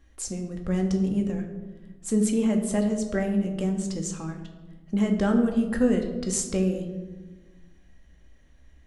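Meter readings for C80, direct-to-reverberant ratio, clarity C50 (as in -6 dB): 9.5 dB, 3.0 dB, 7.5 dB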